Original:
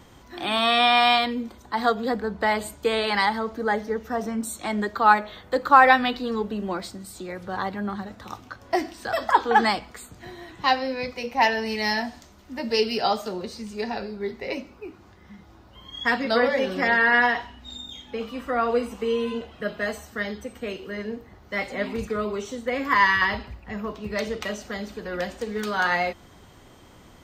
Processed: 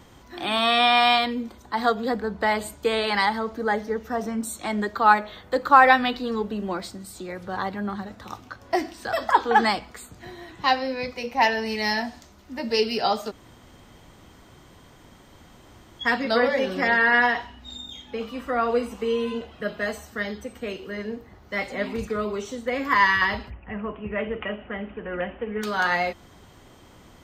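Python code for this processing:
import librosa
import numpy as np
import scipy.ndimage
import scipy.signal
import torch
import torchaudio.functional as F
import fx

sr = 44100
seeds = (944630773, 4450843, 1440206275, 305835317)

y = fx.steep_lowpass(x, sr, hz=3100.0, slope=96, at=(23.49, 25.61), fade=0.02)
y = fx.edit(y, sr, fx.room_tone_fill(start_s=13.31, length_s=2.69, crossfade_s=0.02), tone=tone)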